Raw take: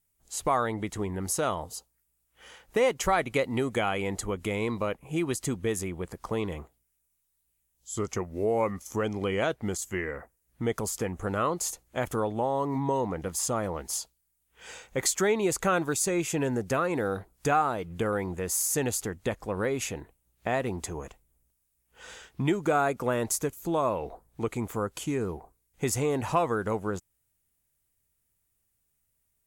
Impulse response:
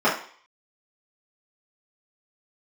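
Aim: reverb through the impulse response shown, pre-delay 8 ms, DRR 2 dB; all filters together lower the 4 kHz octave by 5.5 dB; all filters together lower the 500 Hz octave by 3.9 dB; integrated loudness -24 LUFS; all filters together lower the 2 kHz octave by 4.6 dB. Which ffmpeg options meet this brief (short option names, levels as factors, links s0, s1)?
-filter_complex "[0:a]equalizer=f=500:t=o:g=-4.5,equalizer=f=2000:t=o:g=-4.5,equalizer=f=4000:t=o:g=-6,asplit=2[s0][s1];[1:a]atrim=start_sample=2205,adelay=8[s2];[s1][s2]afir=irnorm=-1:irlink=0,volume=0.0841[s3];[s0][s3]amix=inputs=2:normalize=0,volume=2"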